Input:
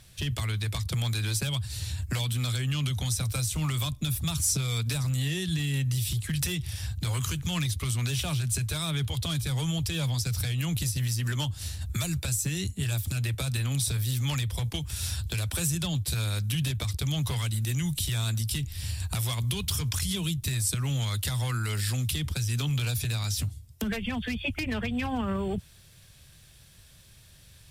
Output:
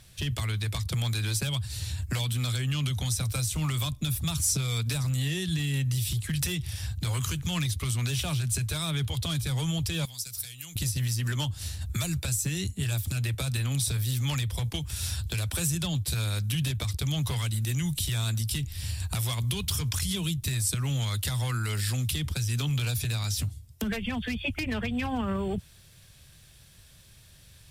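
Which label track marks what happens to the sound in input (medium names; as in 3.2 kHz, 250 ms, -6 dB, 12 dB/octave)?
10.050000	10.760000	pre-emphasis filter coefficient 0.9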